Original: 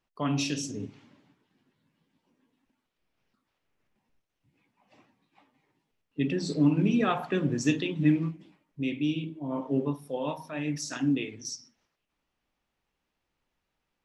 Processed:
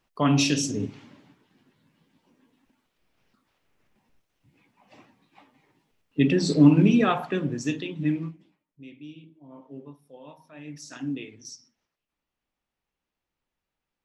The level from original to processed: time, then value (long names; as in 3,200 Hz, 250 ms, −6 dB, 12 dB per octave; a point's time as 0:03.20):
0:06.77 +7.5 dB
0:07.64 −2.5 dB
0:08.24 −2.5 dB
0:08.81 −14.5 dB
0:10.26 −14.5 dB
0:11.02 −5 dB